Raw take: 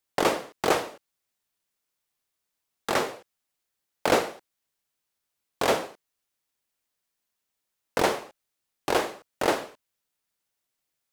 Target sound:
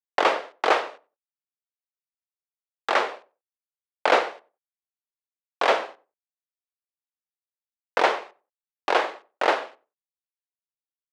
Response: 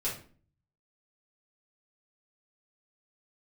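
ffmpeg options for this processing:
-filter_complex "[0:a]aeval=exprs='sgn(val(0))*max(abs(val(0))-0.00211,0)':c=same,highpass=590,lowpass=3.3k,asplit=2[a][b];[b]adelay=93,lowpass=f=990:p=1,volume=-17dB,asplit=2[c][d];[d]adelay=93,lowpass=f=990:p=1,volume=0.22[e];[a][c][e]amix=inputs=3:normalize=0,volume=6dB"

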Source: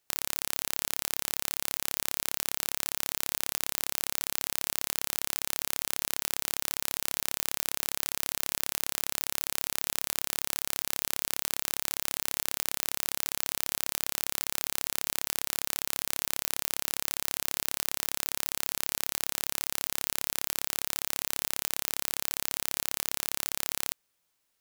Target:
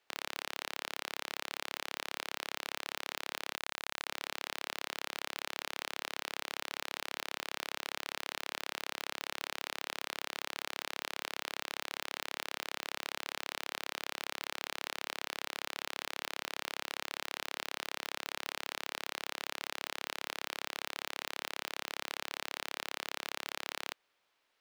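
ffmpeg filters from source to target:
-filter_complex "[0:a]volume=9dB,asoftclip=hard,volume=-9dB,acrossover=split=300 4200:gain=0.2 1 0.112[a][b][c];[a][b][c]amix=inputs=3:normalize=0,asettb=1/sr,asplit=3[d][e][f];[d]atrim=end=3.564[g];[e]atrim=start=3.56:end=4.07,asetpts=PTS-STARTPTS,afade=t=in:d=0.004:c=qsin,afade=t=out:st=0.506:d=0.004:c=qsin,acrusher=bits=6:mix=0:aa=0.5[h];[f]atrim=start=4.066[i];[g][h]acrossfade=d=0.004:c1=hsin:c2=qsin[j];[j][i]acrossfade=d=0.004:c1=qsin:c2=hsin,volume=6dB"

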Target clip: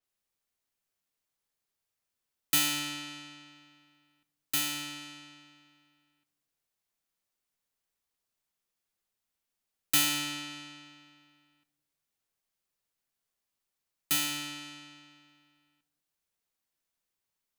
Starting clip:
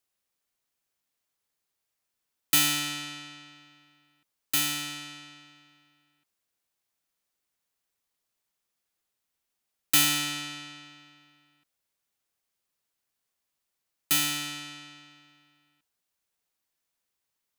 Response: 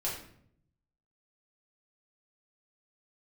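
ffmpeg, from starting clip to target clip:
-filter_complex "[0:a]asplit=2[a][b];[1:a]atrim=start_sample=2205,lowshelf=f=430:g=10[c];[b][c]afir=irnorm=-1:irlink=0,volume=-18dB[d];[a][d]amix=inputs=2:normalize=0,adynamicequalizer=threshold=0.0112:dfrequency=5900:dqfactor=0.7:tfrequency=5900:tqfactor=0.7:attack=5:release=100:ratio=0.375:range=2:mode=cutabove:tftype=highshelf,volume=-4.5dB"

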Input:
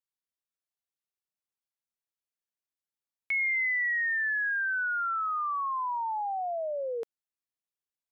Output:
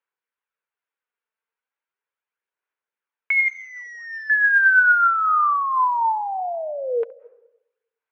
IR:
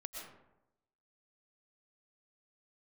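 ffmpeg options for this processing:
-filter_complex "[0:a]asettb=1/sr,asplit=3[a][b][c];[a]atrim=end=3.484[d];[b]atrim=start=3.48:end=4.3,asetpts=PTS-STARTPTS,afade=t=in:d=0.004:c=qsin,afade=t=out:st=0.816:d=0.004:c=qsin,aeval=exprs='0.0251*(abs(mod(val(0)/0.0251+3,4)-2)-1)':c=same[e];[c]atrim=start=4.296[f];[d][e]acrossfade=d=0.004:c1=hsin:c2=qsin[g];[g][f]acrossfade=d=0.004:c1=qsin:c2=hsin,highpass=f=300:w=0.5412,highpass=f=300:w=1.3066,equalizer=f=310:t=q:w=4:g=-8,equalizer=f=450:t=q:w=4:g=5,equalizer=f=670:t=q:w=4:g=-4,equalizer=f=970:t=q:w=4:g=5,equalizer=f=1.5k:t=q:w=4:g=8,equalizer=f=2.3k:t=q:w=4:g=3,lowpass=f=2.8k:w=0.5412,lowpass=f=2.8k:w=1.3066,asplit=2[h][i];[1:a]atrim=start_sample=2205,lowpass=2.3k,adelay=69[j];[i][j]afir=irnorm=-1:irlink=0,volume=-14.5dB[k];[h][k]amix=inputs=2:normalize=0,aphaser=in_gain=1:out_gain=1:delay=4.5:decay=0.31:speed=0.37:type=sinusoidal,volume=6.5dB"

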